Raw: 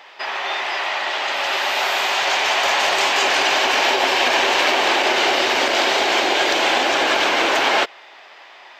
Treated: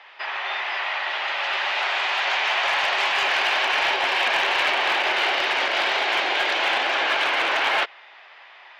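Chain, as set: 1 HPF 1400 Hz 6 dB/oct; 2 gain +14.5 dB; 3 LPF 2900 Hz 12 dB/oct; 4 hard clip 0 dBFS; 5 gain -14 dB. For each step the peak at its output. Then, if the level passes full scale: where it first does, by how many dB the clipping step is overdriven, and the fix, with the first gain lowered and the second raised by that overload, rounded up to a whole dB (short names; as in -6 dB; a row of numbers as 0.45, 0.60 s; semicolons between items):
-7.0, +7.5, +5.5, 0.0, -14.0 dBFS; step 2, 5.5 dB; step 2 +8.5 dB, step 5 -8 dB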